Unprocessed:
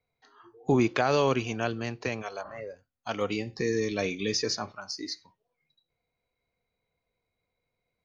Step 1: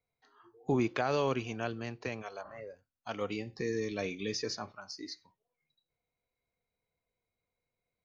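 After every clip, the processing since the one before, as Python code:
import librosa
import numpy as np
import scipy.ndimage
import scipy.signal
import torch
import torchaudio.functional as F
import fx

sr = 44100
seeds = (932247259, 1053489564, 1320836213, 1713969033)

y = fx.high_shelf(x, sr, hz=5700.0, db=-5.0)
y = y * librosa.db_to_amplitude(-6.0)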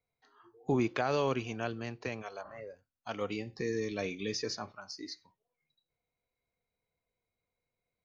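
y = x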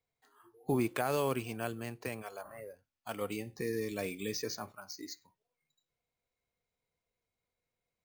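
y = np.repeat(x[::4], 4)[:len(x)]
y = y * librosa.db_to_amplitude(-1.5)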